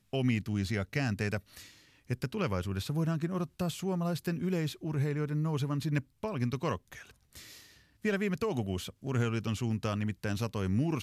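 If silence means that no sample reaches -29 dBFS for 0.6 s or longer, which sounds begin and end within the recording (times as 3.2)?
2.11–6.75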